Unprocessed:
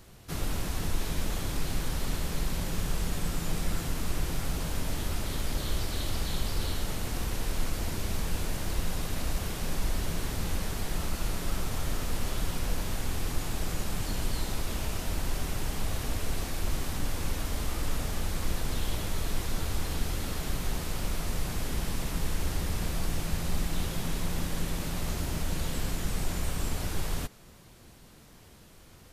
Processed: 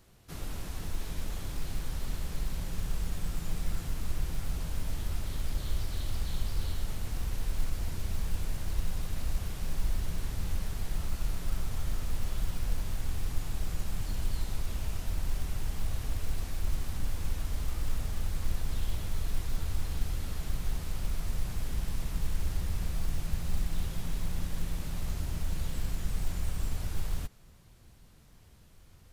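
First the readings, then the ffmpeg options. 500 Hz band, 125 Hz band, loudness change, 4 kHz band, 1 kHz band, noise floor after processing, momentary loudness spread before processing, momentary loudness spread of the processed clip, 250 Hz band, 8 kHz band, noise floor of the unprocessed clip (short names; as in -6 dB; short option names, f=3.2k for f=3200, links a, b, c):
-9.0 dB, -2.0 dB, -3.5 dB, -8.0 dB, -8.5 dB, -56 dBFS, 1 LU, 2 LU, -7.0 dB, -7.5 dB, -53 dBFS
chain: -af "asubboost=boost=2:cutoff=170,acrusher=bits=8:mode=log:mix=0:aa=0.000001,volume=-8dB"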